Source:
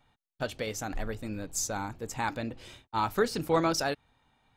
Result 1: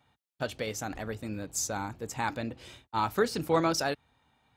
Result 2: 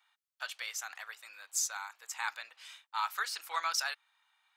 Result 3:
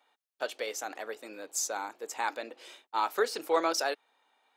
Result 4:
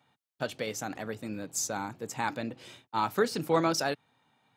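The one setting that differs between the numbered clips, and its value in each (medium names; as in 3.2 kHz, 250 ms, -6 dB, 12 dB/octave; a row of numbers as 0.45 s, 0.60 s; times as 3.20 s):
high-pass, cutoff frequency: 48 Hz, 1.1 kHz, 380 Hz, 120 Hz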